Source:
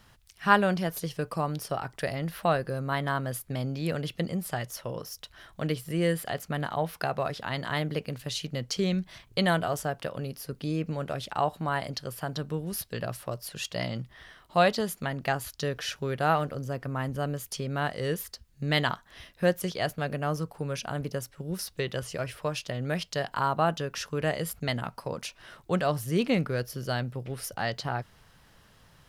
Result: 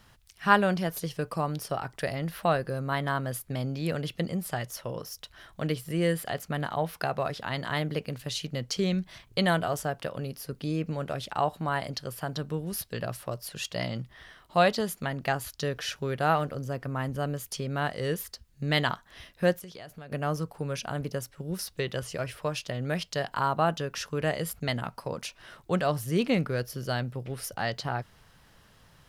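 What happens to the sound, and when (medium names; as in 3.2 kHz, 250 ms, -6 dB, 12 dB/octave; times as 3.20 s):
19.58–20.12 s: compression 10:1, threshold -40 dBFS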